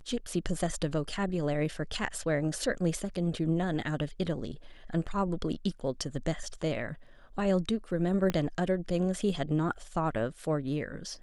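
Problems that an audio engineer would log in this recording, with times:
0:08.30: click −16 dBFS

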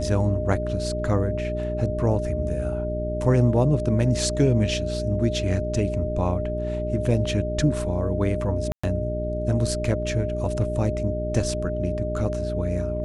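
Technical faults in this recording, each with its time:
mains hum 60 Hz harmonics 7 −29 dBFS
whistle 610 Hz −28 dBFS
0:08.72–0:08.84: drop-out 115 ms

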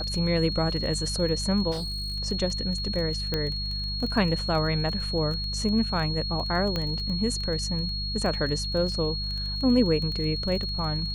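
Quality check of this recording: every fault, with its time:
surface crackle 16 per second −31 dBFS
mains hum 50 Hz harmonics 4 −33 dBFS
whistle 4,300 Hz −31 dBFS
0:01.71–0:02.17: clipping −28 dBFS
0:03.34: click −13 dBFS
0:06.76: click −15 dBFS

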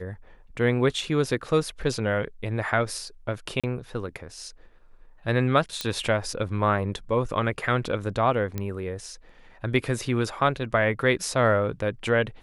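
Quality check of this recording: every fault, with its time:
0:03.60–0:03.64: drop-out 36 ms
0:05.81: click −12 dBFS
0:08.58: click −16 dBFS

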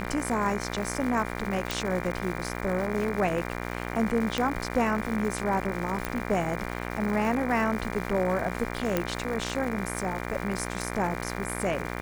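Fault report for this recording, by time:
mains buzz 60 Hz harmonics 40 −34 dBFS
surface crackle 380 per second −34 dBFS
0:01.71: click
0:04.38: click −13 dBFS
0:06.05: click −14 dBFS
0:08.97: click −11 dBFS

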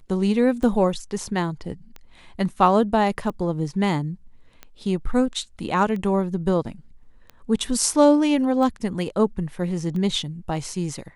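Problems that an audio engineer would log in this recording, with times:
scratch tick 45 rpm −22 dBFS

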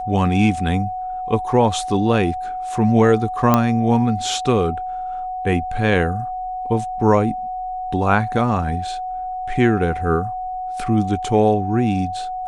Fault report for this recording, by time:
whistle 740 Hz −24 dBFS
0:03.54: click −2 dBFS

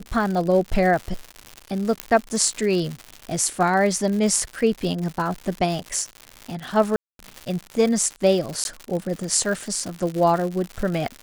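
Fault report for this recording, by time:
surface crackle 170 per second −27 dBFS
0:02.00: click −7 dBFS
0:06.96–0:07.19: drop-out 232 ms
0:08.64–0:08.65: drop-out 11 ms

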